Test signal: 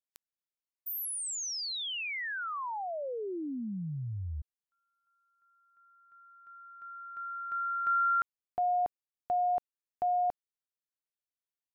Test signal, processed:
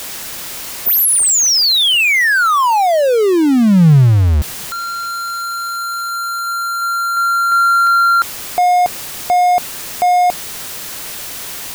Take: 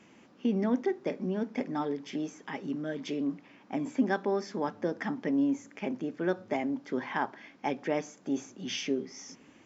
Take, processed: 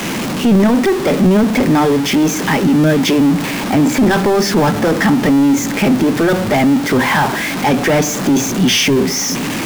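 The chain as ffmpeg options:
-af "aeval=exprs='val(0)+0.5*0.0141*sgn(val(0))':c=same,apsyclip=30dB,adynamicequalizer=threshold=0.0794:dfrequency=150:dqfactor=1.5:tfrequency=150:tqfactor=1.5:attack=5:release=100:ratio=0.375:range=3:mode=boostabove:tftype=bell,volume=-9dB"

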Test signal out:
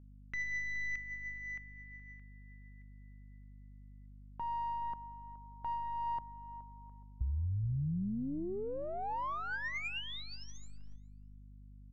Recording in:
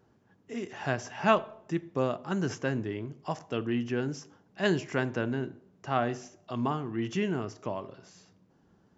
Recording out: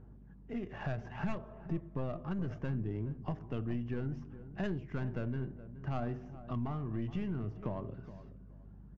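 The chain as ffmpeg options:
-filter_complex "[0:a]aeval=exprs='(tanh(5.01*val(0)+0.7)-tanh(0.7))/5.01':c=same,aphaser=in_gain=1:out_gain=1:delay=1.8:decay=0.33:speed=0.65:type=sinusoidal,bass=f=250:g=11,treble=f=4k:g=-8,adynamicsmooth=sensitivity=7:basefreq=2.5k,aresample=16000,aresample=44100,acompressor=threshold=-36dB:ratio=4,aeval=exprs='val(0)+0.00178*(sin(2*PI*50*n/s)+sin(2*PI*2*50*n/s)/2+sin(2*PI*3*50*n/s)/3+sin(2*PI*4*50*n/s)/4+sin(2*PI*5*50*n/s)/5)':c=same,asplit=2[a][b];[b]adelay=421,lowpass=f=1.2k:p=1,volume=-14dB,asplit=2[c][d];[d]adelay=421,lowpass=f=1.2k:p=1,volume=0.25,asplit=2[e][f];[f]adelay=421,lowpass=f=1.2k:p=1,volume=0.25[g];[a][c][e][g]amix=inputs=4:normalize=0,volume=1dB"

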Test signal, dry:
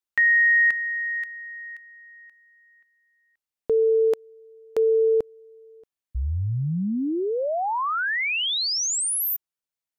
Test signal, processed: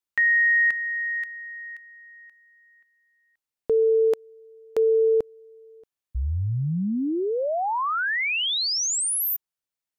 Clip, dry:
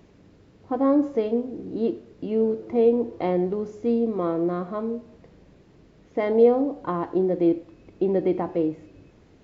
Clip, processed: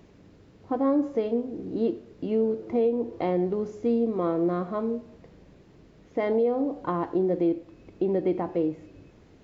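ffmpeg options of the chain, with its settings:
-af "alimiter=limit=-16dB:level=0:latency=1:release=304"

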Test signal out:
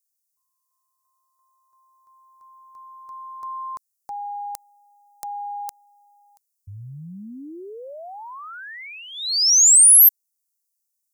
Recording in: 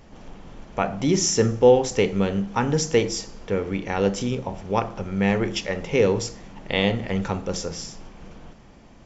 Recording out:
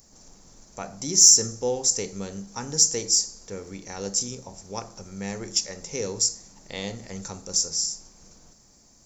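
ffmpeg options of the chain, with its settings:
-af "aexciter=amount=15.4:drive=5.9:freq=4.7k,volume=-12dB"

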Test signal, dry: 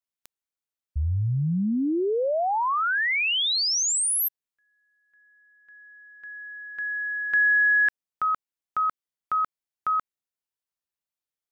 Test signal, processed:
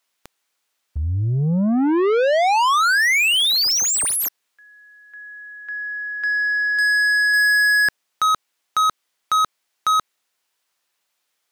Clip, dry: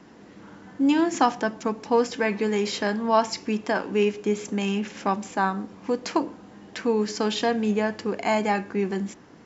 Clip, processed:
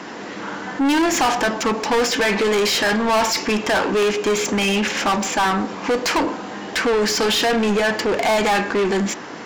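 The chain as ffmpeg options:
-filter_complex "[0:a]asplit=2[a][b];[b]highpass=f=720:p=1,volume=33dB,asoftclip=type=tanh:threshold=-6dB[c];[a][c]amix=inputs=2:normalize=0,lowpass=f=6k:p=1,volume=-6dB,volume=-4.5dB"

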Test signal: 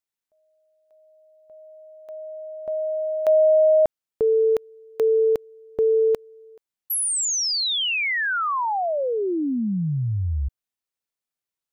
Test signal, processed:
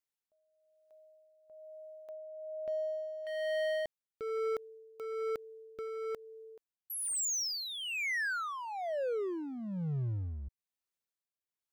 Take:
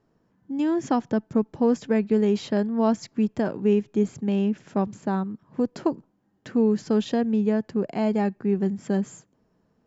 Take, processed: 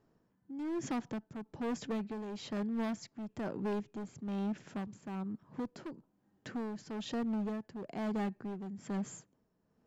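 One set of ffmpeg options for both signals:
-af "volume=23dB,asoftclip=hard,volume=-23dB,acompressor=threshold=-31dB:ratio=2.5:attack=0.3:release=110:knee=1:detection=peak,tremolo=f=1.1:d=0.6,volume=-3.5dB"

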